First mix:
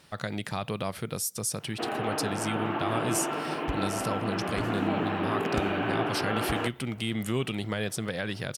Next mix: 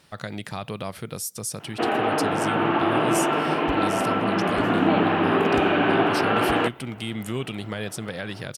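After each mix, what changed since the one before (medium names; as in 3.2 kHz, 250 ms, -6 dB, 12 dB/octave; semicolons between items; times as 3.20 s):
first sound +9.0 dB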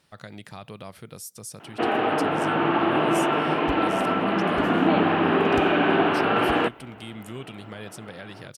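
speech -8.0 dB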